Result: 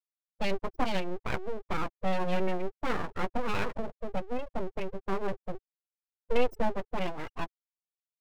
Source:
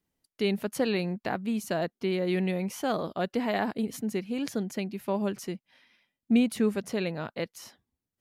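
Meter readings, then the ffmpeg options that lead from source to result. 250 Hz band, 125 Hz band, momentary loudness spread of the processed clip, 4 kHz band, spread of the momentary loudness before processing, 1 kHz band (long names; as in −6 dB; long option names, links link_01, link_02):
−9.0 dB, −4.5 dB, 9 LU, −4.0 dB, 9 LU, +2.0 dB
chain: -filter_complex "[0:a]asplit=2[link_01][link_02];[link_02]adelay=16,volume=-6.5dB[link_03];[link_01][link_03]amix=inputs=2:normalize=0,afftfilt=real='re*gte(hypot(re,im),0.0447)':imag='im*gte(hypot(re,im),0.0447)':win_size=1024:overlap=0.75,aeval=exprs='abs(val(0))':channel_layout=same"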